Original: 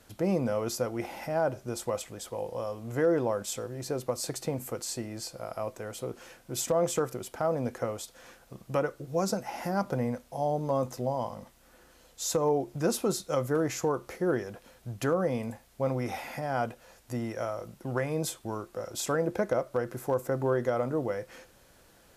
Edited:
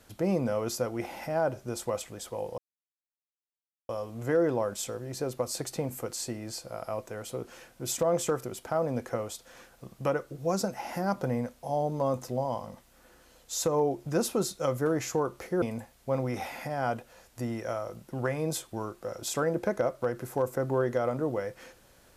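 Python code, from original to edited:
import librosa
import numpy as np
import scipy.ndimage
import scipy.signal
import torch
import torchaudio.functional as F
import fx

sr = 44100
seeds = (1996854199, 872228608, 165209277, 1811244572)

y = fx.edit(x, sr, fx.insert_silence(at_s=2.58, length_s=1.31),
    fx.cut(start_s=14.31, length_s=1.03), tone=tone)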